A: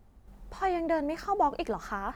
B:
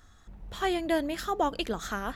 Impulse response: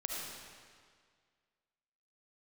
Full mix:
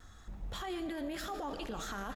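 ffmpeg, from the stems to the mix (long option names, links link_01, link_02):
-filter_complex "[0:a]flanger=delay=17:depth=6:speed=1.4,volume=-7.5dB[link_01];[1:a]alimiter=level_in=2.5dB:limit=-24dB:level=0:latency=1,volume=-2.5dB,adelay=3.2,volume=-1dB,asplit=2[link_02][link_03];[link_03]volume=-7dB[link_04];[2:a]atrim=start_sample=2205[link_05];[link_04][link_05]afir=irnorm=-1:irlink=0[link_06];[link_01][link_02][link_06]amix=inputs=3:normalize=0,alimiter=level_in=8dB:limit=-24dB:level=0:latency=1:release=31,volume=-8dB"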